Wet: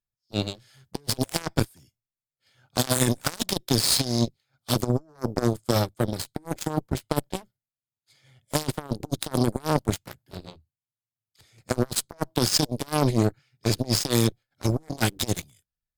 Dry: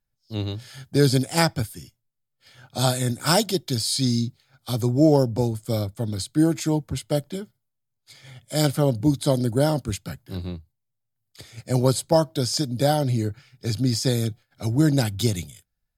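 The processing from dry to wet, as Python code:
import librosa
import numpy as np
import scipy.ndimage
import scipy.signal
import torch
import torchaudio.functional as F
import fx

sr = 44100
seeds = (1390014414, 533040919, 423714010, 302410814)

y = fx.over_compress(x, sr, threshold_db=-23.0, ratio=-0.5)
y = fx.cheby_harmonics(y, sr, harmonics=(2, 3, 5, 7), levels_db=(-18, -25, -43, -17), full_scale_db=-9.0)
y = y * librosa.db_to_amplitude(3.5)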